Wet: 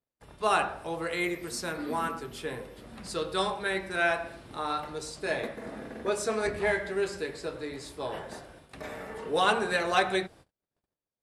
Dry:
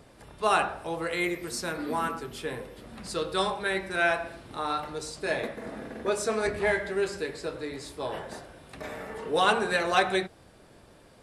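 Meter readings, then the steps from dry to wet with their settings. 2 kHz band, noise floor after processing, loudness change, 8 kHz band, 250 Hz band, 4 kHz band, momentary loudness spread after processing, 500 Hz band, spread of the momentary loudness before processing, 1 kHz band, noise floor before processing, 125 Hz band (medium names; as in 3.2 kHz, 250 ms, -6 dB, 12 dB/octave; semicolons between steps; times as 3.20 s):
-1.5 dB, under -85 dBFS, -1.5 dB, -1.5 dB, -1.5 dB, -1.5 dB, 15 LU, -1.5 dB, 15 LU, -1.5 dB, -55 dBFS, -1.5 dB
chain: gate -49 dBFS, range -40 dB; trim -1.5 dB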